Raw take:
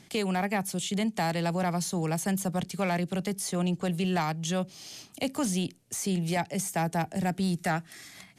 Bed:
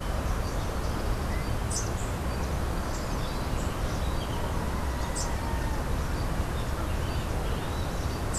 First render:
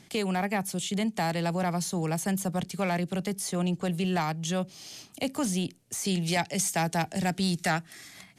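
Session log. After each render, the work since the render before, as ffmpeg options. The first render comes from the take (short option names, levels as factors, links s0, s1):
-filter_complex "[0:a]asettb=1/sr,asplit=3[s0][s1][s2];[s0]atrim=end=6.054[s3];[s1]atrim=start=6.05:end=7.79,asetpts=PTS-STARTPTS,afade=t=in:d=0.004:c=qsin,afade=t=out:st=1.736:d=0.004:c=qsin,equalizer=f=4600:t=o:w=2.3:g=8[s4];[s2]atrim=start=7.786[s5];[s3][s4]acrossfade=d=0.004:c1=hsin:c2=qsin[s6];[s6][s5]acrossfade=d=0.004:c1=qsin:c2=hsin"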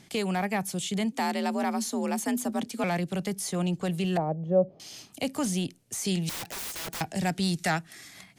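-filter_complex "[0:a]asettb=1/sr,asplit=3[s0][s1][s2];[s0]atrim=end=1.124[s3];[s1]atrim=start=1.12:end=2.84,asetpts=PTS-STARTPTS,afade=t=in:d=0.004:c=qsin,afade=t=out:st=1.716:d=0.004:c=qsin,afreqshift=54[s4];[s2]atrim=start=2.836[s5];[s3][s4]acrossfade=d=0.004:c1=hsin:c2=qsin[s6];[s6][s5]acrossfade=d=0.004:c1=qsin:c2=hsin,asettb=1/sr,asplit=3[s7][s8][s9];[s7]atrim=end=4.174[s10];[s8]atrim=start=4.17:end=4.8,asetpts=PTS-STARTPTS,afade=t=in:d=0.004:c=qsin,afade=t=out:st=0.626:d=0.004:c=qsin,lowpass=f=560:t=q:w=4[s11];[s9]atrim=start=4.796[s12];[s10][s11]acrossfade=d=0.004:c1=hsin:c2=qsin[s13];[s13][s12]acrossfade=d=0.004:c1=qsin:c2=hsin,asettb=1/sr,asplit=3[s14][s15][s16];[s14]atrim=end=6.294[s17];[s15]atrim=start=6.29:end=7.01,asetpts=PTS-STARTPTS,afade=t=in:d=0.004:c=qsin,afade=t=out:st=0.716:d=0.004:c=qsin,aeval=exprs='(mod(35.5*val(0)+1,2)-1)/35.5':c=same[s18];[s16]atrim=start=7.006[s19];[s17][s18]acrossfade=d=0.004:c1=hsin:c2=qsin[s20];[s20][s19]acrossfade=d=0.004:c1=qsin:c2=hsin"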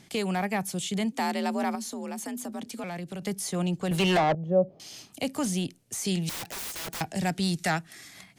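-filter_complex "[0:a]asettb=1/sr,asplit=3[s0][s1][s2];[s0]atrim=end=1.754[s3];[s1]atrim=start=1.75:end=3.22,asetpts=PTS-STARTPTS,afade=t=in:d=0.004:c=qsin,afade=t=out:st=1.466:d=0.004:c=qsin,acompressor=threshold=0.02:ratio=3:attack=3.2:release=140:knee=1:detection=peak[s4];[s2]atrim=start=3.216[s5];[s3][s4]acrossfade=d=0.004:c1=hsin:c2=qsin[s6];[s6][s5]acrossfade=d=0.004:c1=qsin:c2=hsin,asettb=1/sr,asplit=3[s7][s8][s9];[s7]atrim=end=3.914[s10];[s8]atrim=start=3.91:end=4.35,asetpts=PTS-STARTPTS,afade=t=in:d=0.004:c=qsin,afade=t=out:st=0.436:d=0.004:c=qsin,asplit=2[s11][s12];[s12]highpass=f=720:p=1,volume=15.8,asoftclip=type=tanh:threshold=0.168[s13];[s11][s13]amix=inputs=2:normalize=0,lowpass=f=4400:p=1,volume=0.501[s14];[s9]atrim=start=4.346[s15];[s10][s14]acrossfade=d=0.004:c1=hsin:c2=qsin[s16];[s16][s15]acrossfade=d=0.004:c1=qsin:c2=hsin"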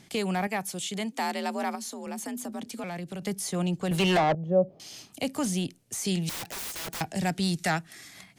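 -filter_complex "[0:a]asettb=1/sr,asplit=3[s0][s1][s2];[s0]atrim=end=0.474[s3];[s1]atrim=start=0.47:end=2.07,asetpts=PTS-STARTPTS,afade=t=in:d=0.004:c=qsin,afade=t=out:st=1.596:d=0.004:c=qsin,lowshelf=f=210:g=-10.5[s4];[s2]atrim=start=2.066[s5];[s3][s4]acrossfade=d=0.004:c1=hsin:c2=qsin[s6];[s6][s5]acrossfade=d=0.004:c1=qsin:c2=hsin"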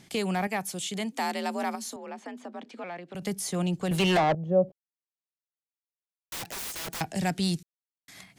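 -filter_complex "[0:a]asettb=1/sr,asplit=3[s0][s1][s2];[s0]atrim=end=1.964[s3];[s1]atrim=start=1.96:end=3.15,asetpts=PTS-STARTPTS,afade=t=in:d=0.004:c=qsin,afade=t=out:st=1.186:d=0.004:c=qsin,highpass=340,lowpass=2700[s4];[s2]atrim=start=3.146[s5];[s3][s4]acrossfade=d=0.004:c1=hsin:c2=qsin[s6];[s6][s5]acrossfade=d=0.004:c1=qsin:c2=hsin,asplit=5[s7][s8][s9][s10][s11];[s7]atrim=end=4.72,asetpts=PTS-STARTPTS,afade=t=out:st=4.716:d=0.004:c=hsin[s12];[s8]atrim=start=4.72:end=6.32,asetpts=PTS-STARTPTS,volume=0[s13];[s9]atrim=start=6.32:end=7.63,asetpts=PTS-STARTPTS,afade=t=in:d=0.004:c=hsin,afade=t=out:st=1.306:d=0.004:c=hsin[s14];[s10]atrim=start=7.63:end=8.08,asetpts=PTS-STARTPTS,volume=0[s15];[s11]atrim=start=8.08,asetpts=PTS-STARTPTS,afade=t=in:d=0.004:c=hsin[s16];[s12][s13][s14][s15][s16]concat=n=5:v=0:a=1"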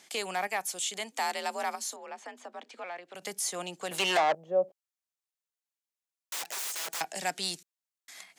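-af "highpass=570,equalizer=f=7100:w=2:g=4"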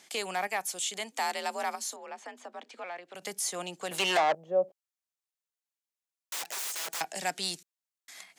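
-af anull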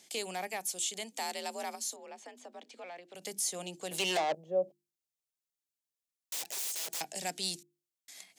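-af "equalizer=f=1300:w=0.81:g=-11.5,bandreject=f=50:t=h:w=6,bandreject=f=100:t=h:w=6,bandreject=f=150:t=h:w=6,bandreject=f=200:t=h:w=6,bandreject=f=250:t=h:w=6,bandreject=f=300:t=h:w=6,bandreject=f=350:t=h:w=6"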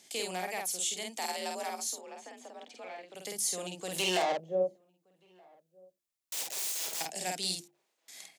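-filter_complex "[0:a]asplit=2[s0][s1];[s1]adelay=49,volume=0.75[s2];[s0][s2]amix=inputs=2:normalize=0,asplit=2[s3][s4];[s4]adelay=1224,volume=0.0398,highshelf=f=4000:g=-27.6[s5];[s3][s5]amix=inputs=2:normalize=0"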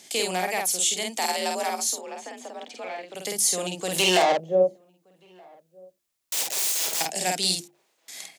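-af "volume=2.99"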